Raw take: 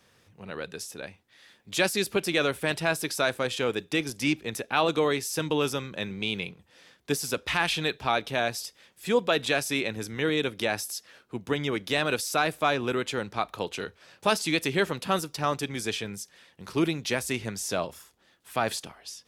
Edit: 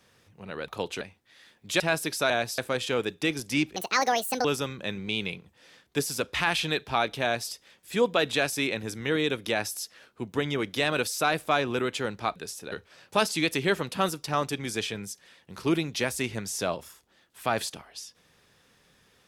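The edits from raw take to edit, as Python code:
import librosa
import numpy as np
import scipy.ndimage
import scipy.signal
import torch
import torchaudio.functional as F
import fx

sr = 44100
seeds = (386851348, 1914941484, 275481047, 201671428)

y = fx.edit(x, sr, fx.swap(start_s=0.68, length_s=0.36, other_s=13.49, other_length_s=0.33),
    fx.cut(start_s=1.83, length_s=0.95),
    fx.speed_span(start_s=4.46, length_s=1.12, speed=1.63),
    fx.duplicate(start_s=8.36, length_s=0.28, to_s=3.28), tone=tone)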